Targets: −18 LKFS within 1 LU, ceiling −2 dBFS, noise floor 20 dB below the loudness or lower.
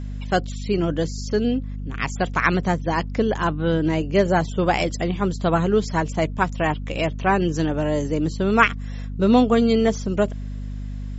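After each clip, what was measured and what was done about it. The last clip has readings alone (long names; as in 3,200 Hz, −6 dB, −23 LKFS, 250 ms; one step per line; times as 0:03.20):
mains hum 50 Hz; hum harmonics up to 250 Hz; level of the hum −27 dBFS; integrated loudness −21.5 LKFS; sample peak −2.5 dBFS; target loudness −18.0 LKFS
→ mains-hum notches 50/100/150/200/250 Hz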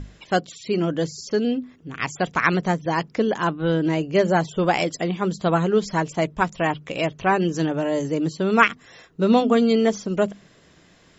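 mains hum none found; integrated loudness −22.5 LKFS; sample peak −2.5 dBFS; target loudness −18.0 LKFS
→ level +4.5 dB
brickwall limiter −2 dBFS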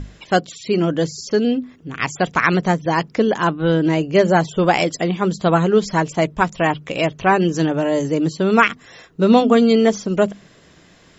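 integrated loudness −18.0 LKFS; sample peak −2.0 dBFS; background noise floor −50 dBFS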